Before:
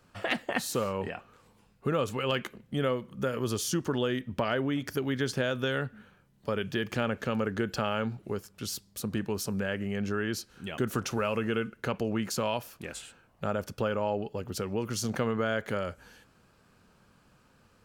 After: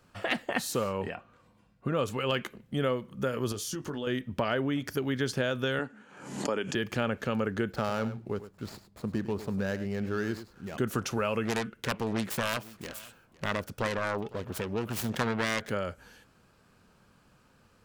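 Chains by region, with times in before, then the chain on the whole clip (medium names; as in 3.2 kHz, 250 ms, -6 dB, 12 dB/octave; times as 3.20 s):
1.15–1.97 s: treble shelf 4.7 kHz -10 dB + comb of notches 430 Hz
3.52–4.07 s: compression 2.5:1, threshold -35 dBFS + doubling 20 ms -8.5 dB
5.79–6.75 s: cabinet simulation 250–9800 Hz, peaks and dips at 280 Hz +7 dB, 880 Hz +5 dB, 3.7 kHz -5 dB, 7 kHz +9 dB + swell ahead of each attack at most 69 dB/s
7.71–10.77 s: median filter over 15 samples + delay 102 ms -13 dB
11.45–15.70 s: self-modulated delay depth 0.62 ms + delay 507 ms -20.5 dB
whole clip: none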